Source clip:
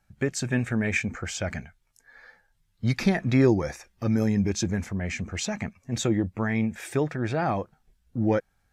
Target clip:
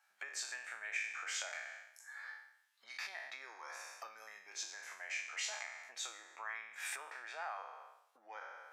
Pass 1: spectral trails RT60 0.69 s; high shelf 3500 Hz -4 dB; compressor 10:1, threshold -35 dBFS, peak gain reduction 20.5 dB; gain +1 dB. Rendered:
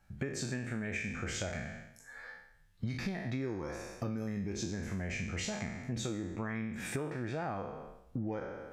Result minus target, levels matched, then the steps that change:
1000 Hz band -3.0 dB
add after compressor: HPF 850 Hz 24 dB/oct

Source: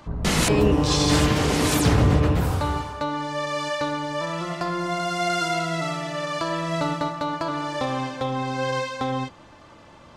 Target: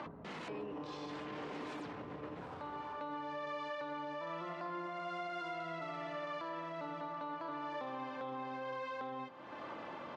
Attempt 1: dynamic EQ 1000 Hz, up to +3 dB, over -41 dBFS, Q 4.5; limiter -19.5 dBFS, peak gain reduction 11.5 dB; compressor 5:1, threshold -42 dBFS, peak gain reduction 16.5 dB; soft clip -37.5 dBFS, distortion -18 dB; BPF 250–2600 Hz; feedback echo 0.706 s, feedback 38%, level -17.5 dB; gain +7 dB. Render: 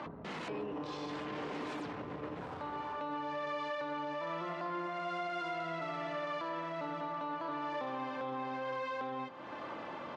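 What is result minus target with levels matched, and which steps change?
compressor: peak gain reduction -5 dB
change: compressor 5:1, threshold -48 dBFS, peak gain reduction 21.5 dB

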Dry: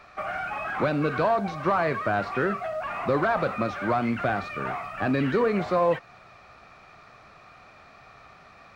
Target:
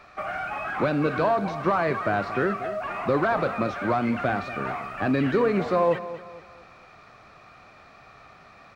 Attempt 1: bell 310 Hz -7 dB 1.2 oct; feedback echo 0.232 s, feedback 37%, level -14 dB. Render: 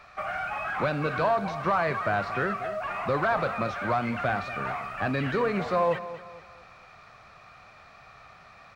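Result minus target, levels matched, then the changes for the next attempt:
250 Hz band -4.0 dB
change: bell 310 Hz +2 dB 1.2 oct

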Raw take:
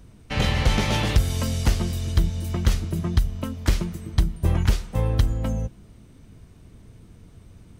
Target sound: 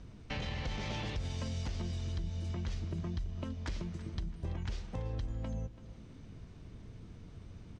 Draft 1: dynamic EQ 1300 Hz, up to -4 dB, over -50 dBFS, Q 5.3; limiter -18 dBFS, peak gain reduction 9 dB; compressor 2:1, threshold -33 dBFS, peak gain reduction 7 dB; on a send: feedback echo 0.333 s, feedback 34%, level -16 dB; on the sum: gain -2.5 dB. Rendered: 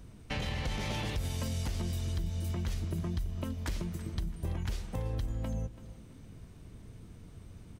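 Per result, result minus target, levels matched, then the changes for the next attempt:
8000 Hz band +4.5 dB; compressor: peak gain reduction -3.5 dB
add after dynamic EQ: LPF 6400 Hz 24 dB/oct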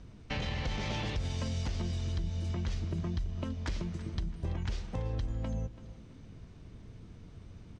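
compressor: peak gain reduction -3.5 dB
change: compressor 2:1, threshold -39.5 dBFS, peak gain reduction 10 dB

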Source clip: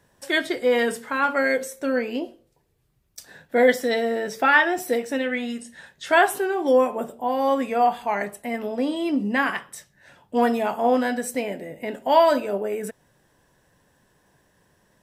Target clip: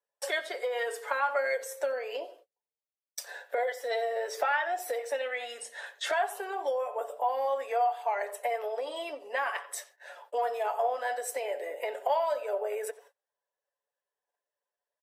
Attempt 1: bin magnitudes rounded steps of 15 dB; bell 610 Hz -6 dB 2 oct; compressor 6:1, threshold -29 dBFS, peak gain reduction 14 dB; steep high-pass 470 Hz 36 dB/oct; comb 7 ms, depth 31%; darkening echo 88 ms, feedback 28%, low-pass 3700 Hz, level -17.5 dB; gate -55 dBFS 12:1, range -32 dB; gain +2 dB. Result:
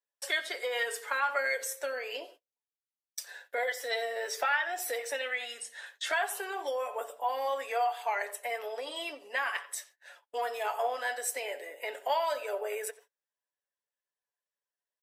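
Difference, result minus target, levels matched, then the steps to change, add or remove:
500 Hz band -3.0 dB
change: bell 610 Hz +5.5 dB 2 oct

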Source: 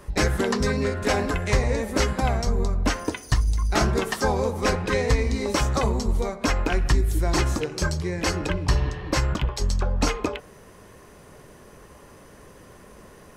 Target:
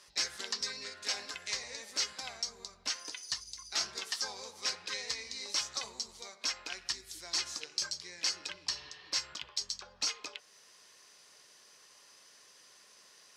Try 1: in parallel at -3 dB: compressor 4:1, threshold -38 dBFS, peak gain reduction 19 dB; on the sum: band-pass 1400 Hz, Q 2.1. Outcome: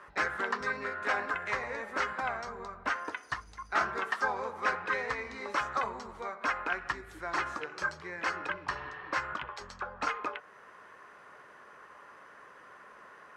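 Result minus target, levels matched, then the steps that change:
4000 Hz band -14.5 dB
change: band-pass 4900 Hz, Q 2.1

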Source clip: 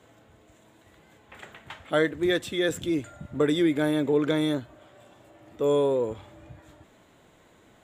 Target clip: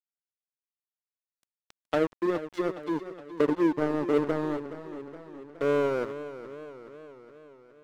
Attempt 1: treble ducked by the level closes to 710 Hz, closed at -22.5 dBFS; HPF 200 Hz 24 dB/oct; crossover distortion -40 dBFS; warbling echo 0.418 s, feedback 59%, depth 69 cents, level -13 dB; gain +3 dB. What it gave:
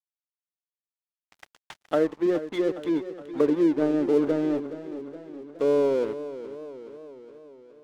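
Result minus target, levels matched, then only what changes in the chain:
crossover distortion: distortion -10 dB
change: crossover distortion -28.5 dBFS

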